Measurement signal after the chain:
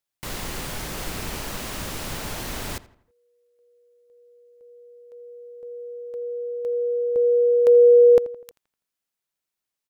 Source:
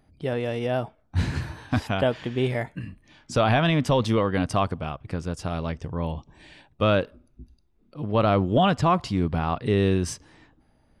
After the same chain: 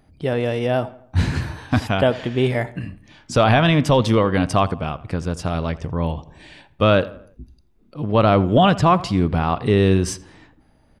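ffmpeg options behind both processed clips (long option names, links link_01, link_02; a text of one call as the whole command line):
ffmpeg -i in.wav -filter_complex "[0:a]asplit=2[link_01][link_02];[link_02]adelay=83,lowpass=frequency=2700:poles=1,volume=-17.5dB,asplit=2[link_03][link_04];[link_04]adelay=83,lowpass=frequency=2700:poles=1,volume=0.46,asplit=2[link_05][link_06];[link_06]adelay=83,lowpass=frequency=2700:poles=1,volume=0.46,asplit=2[link_07][link_08];[link_08]adelay=83,lowpass=frequency=2700:poles=1,volume=0.46[link_09];[link_01][link_03][link_05][link_07][link_09]amix=inputs=5:normalize=0,volume=5.5dB" out.wav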